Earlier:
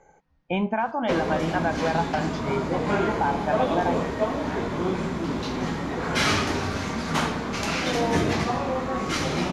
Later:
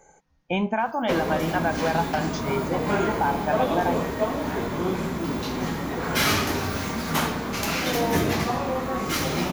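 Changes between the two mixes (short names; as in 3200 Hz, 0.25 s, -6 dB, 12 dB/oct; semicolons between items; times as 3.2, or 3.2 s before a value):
speech: remove air absorption 160 m; background: remove Bessel low-pass 6900 Hz, order 8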